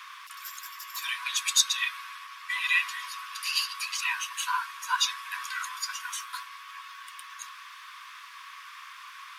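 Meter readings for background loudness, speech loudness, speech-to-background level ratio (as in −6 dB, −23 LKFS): −43.0 LKFS, −29.0 LKFS, 14.0 dB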